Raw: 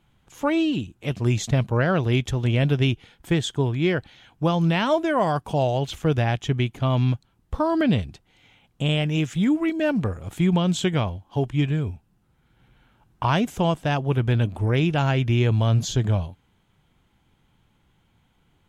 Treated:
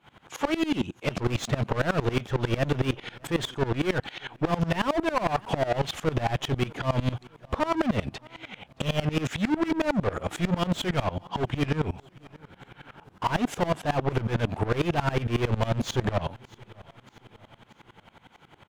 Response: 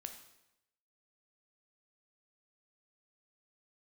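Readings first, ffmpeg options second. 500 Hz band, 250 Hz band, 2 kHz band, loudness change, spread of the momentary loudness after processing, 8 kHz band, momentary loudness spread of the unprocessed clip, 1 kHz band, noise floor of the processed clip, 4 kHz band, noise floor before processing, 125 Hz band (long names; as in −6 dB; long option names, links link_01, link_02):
−3.0 dB, −5.0 dB, −2.5 dB, −5.0 dB, 7 LU, −4.0 dB, 7 LU, −1.5 dB, −60 dBFS, −3.5 dB, −65 dBFS, −7.0 dB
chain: -filter_complex "[0:a]asplit=2[link_01][link_02];[link_02]highpass=frequency=720:poles=1,volume=36dB,asoftclip=type=tanh:threshold=-7.5dB[link_03];[link_01][link_03]amix=inputs=2:normalize=0,lowpass=frequency=1600:poles=1,volume=-6dB,aecho=1:1:623|1246|1869|2492:0.0668|0.0368|0.0202|0.0111,aeval=exprs='val(0)*pow(10,-22*if(lt(mod(-11*n/s,1),2*abs(-11)/1000),1-mod(-11*n/s,1)/(2*abs(-11)/1000),(mod(-11*n/s,1)-2*abs(-11)/1000)/(1-2*abs(-11)/1000))/20)':channel_layout=same,volume=-4.5dB"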